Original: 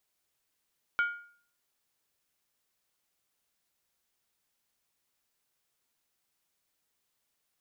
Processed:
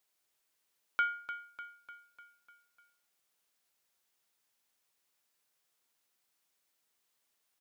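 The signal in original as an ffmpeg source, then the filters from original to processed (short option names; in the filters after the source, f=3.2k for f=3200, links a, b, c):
-f lavfi -i "aevalsrc='0.0794*pow(10,-3*t/0.51)*sin(2*PI*1420*t)+0.0251*pow(10,-3*t/0.404)*sin(2*PI*2263.5*t)+0.00794*pow(10,-3*t/0.349)*sin(2*PI*3033.1*t)+0.00251*pow(10,-3*t/0.337)*sin(2*PI*3260.3*t)+0.000794*pow(10,-3*t/0.313)*sin(2*PI*3767.3*t)':d=0.63:s=44100"
-af "lowshelf=f=180:g=-10.5,aecho=1:1:299|598|897|1196|1495|1794:0.299|0.164|0.0903|0.0497|0.0273|0.015"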